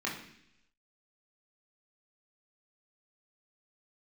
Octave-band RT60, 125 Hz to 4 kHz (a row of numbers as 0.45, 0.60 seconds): 0.90, 0.90, 0.75, 0.70, 0.90, 0.95 seconds